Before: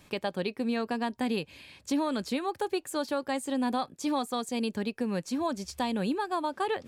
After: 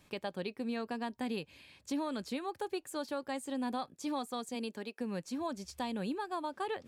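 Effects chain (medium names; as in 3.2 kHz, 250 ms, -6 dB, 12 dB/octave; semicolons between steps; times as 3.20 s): 4.54–4.99 s: high-pass 170 Hz -> 390 Hz 12 dB/octave; trim -7 dB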